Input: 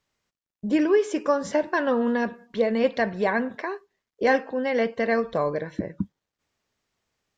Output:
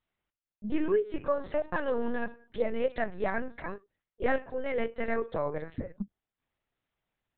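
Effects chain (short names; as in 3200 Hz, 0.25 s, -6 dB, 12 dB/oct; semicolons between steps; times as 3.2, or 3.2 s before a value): LPC vocoder at 8 kHz pitch kept; gain -6.5 dB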